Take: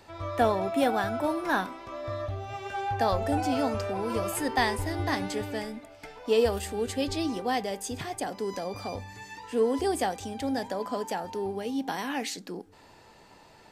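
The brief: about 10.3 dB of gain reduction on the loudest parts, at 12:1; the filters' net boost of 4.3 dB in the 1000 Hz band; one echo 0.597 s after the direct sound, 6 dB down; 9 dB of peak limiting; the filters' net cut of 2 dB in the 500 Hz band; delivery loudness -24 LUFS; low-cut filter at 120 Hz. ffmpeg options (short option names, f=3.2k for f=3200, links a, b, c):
-af "highpass=120,equalizer=f=500:t=o:g=-5,equalizer=f=1k:t=o:g=8,acompressor=threshold=-28dB:ratio=12,alimiter=level_in=2dB:limit=-24dB:level=0:latency=1,volume=-2dB,aecho=1:1:597:0.501,volume=11dB"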